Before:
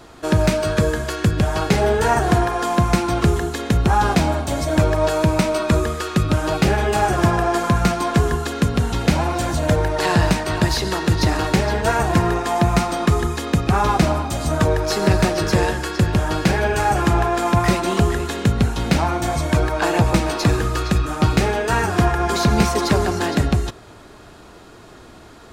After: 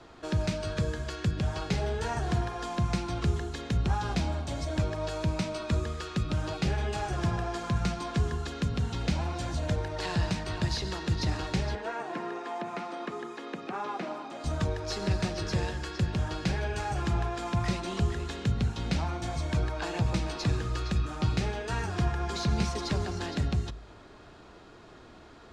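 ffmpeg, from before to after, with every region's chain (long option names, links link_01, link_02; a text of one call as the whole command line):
ffmpeg -i in.wav -filter_complex "[0:a]asettb=1/sr,asplit=3[link_01][link_02][link_03];[link_01]atrim=end=11.754[link_04];[link_02]atrim=start=11.75:end=14.44,asetpts=PTS-STARTPTS,afade=type=in:duration=0.004:curve=qsin,afade=type=out:start_time=2.686:duration=0.004:curve=qsin,highpass=frequency=260:width=0.5412,highpass=frequency=260:width=1.3066,acrossover=split=2700[link_05][link_06];[link_06]acompressor=threshold=-45dB:ratio=4:attack=1:release=60[link_07];[link_05][link_07]amix=inputs=2:normalize=0[link_08];[link_03]atrim=start=14.436[link_09];[link_04][link_08]acrossfade=duration=0.004:curve1=hsin:curve2=qsin[link_10];[link_10][link_09]acrossfade=duration=0.004:curve1=qsin:curve2=hsin,lowpass=5500,bandreject=frequency=52.26:width_type=h:width=4,bandreject=frequency=104.52:width_type=h:width=4,bandreject=frequency=156.78:width_type=h:width=4,bandreject=frequency=209.04:width_type=h:width=4,bandreject=frequency=261.3:width_type=h:width=4,acrossover=split=170|3000[link_11][link_12][link_13];[link_12]acompressor=threshold=-39dB:ratio=1.5[link_14];[link_11][link_14][link_13]amix=inputs=3:normalize=0,volume=-8dB" out.wav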